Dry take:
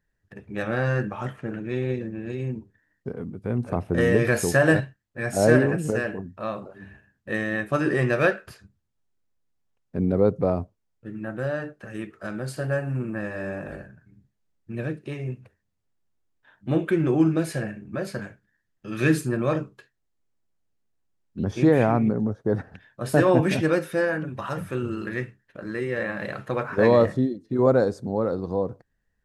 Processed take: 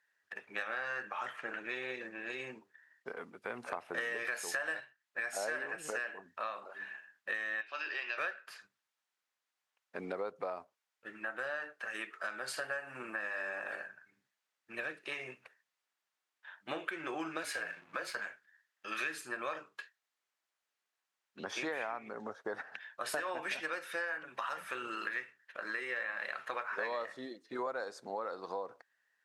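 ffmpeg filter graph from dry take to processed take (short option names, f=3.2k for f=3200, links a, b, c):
-filter_complex "[0:a]asettb=1/sr,asplit=3[a][b][c];[a]atrim=end=7.614[d];[b]atrim=start=7.61:end=8.18,asetpts=PTS-STARTPTS,afade=t=in:d=0.004:c=qsin,afade=t=out:st=0.566:d=0.004:c=qsin,acompressor=threshold=-32dB:ratio=1.5:attack=3.2:release=140:knee=1:detection=peak,highpass=490,equalizer=f=490:t=q:w=4:g=-6,equalizer=f=720:t=q:w=4:g=-5,equalizer=f=1.2k:t=q:w=4:g=-7,equalizer=f=1.9k:t=q:w=4:g=-5,equalizer=f=2.7k:t=q:w=4:g=8,equalizer=f=4.7k:t=q:w=4:g=9,lowpass=f=5.3k:w=0.5412,lowpass=f=5.3k:w=1.3066[e];[c]atrim=start=8.176[f];[d][e]acrossfade=d=0.004:c1=hsin:c2=qsin[g];[g][f]acrossfade=d=0.004:c1=qsin:c2=hsin,asettb=1/sr,asplit=3[h][i][j];[h]atrim=end=17.434[k];[i]atrim=start=17.43:end=18.16,asetpts=PTS-STARTPTS,afade=t=in:d=0.004:c=qsin,afade=t=out:st=0.726:d=0.004:c=qsin,afreqshift=-38,aeval=exprs='sgn(val(0))*max(abs(val(0))-0.00168,0)':c=same[l];[j]atrim=start=18.156[m];[k][l]acrossfade=d=0.004:c1=hsin:c2=qsin[n];[n][m]acrossfade=d=0.004:c1=qsin:c2=hsin,highpass=1.2k,aemphasis=mode=reproduction:type=cd,acompressor=threshold=-43dB:ratio=6,volume=7.5dB"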